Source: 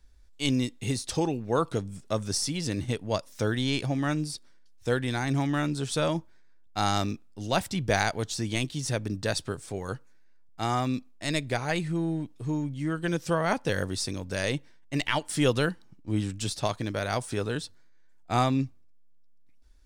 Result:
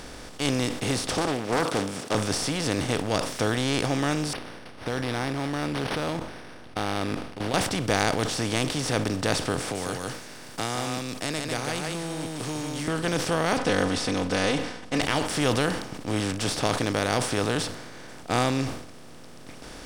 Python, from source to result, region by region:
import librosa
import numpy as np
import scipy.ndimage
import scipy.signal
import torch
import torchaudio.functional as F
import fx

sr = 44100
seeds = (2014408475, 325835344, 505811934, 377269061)

y = fx.chain(x, sr, fx.highpass(hz=280.0, slope=12),
    fx.doppler_dist(depth_ms=0.49), at=(1.17, 2.15))
y = fx.chain(y, sr, fx.level_steps(step_db=18),
    fx.resample_linear(factor=6), at=(4.33, 7.54))
y = fx.chain(y, sr, fx.pre_emphasis(coefficient=0.8),
    fx.echo_single(ms=149, db=-6.5),
    fx.band_squash(depth_pct=70), at=(9.6, 12.88))
y = fx.chain(y, sr, fx.lowpass(hz=5500.0, slope=12),
    fx.comb(ms=4.0, depth=0.93), at=(13.57, 15.01))
y = fx.bin_compress(y, sr, power=0.4)
y = fx.sustainer(y, sr, db_per_s=72.0)
y = y * librosa.db_to_amplitude(-4.0)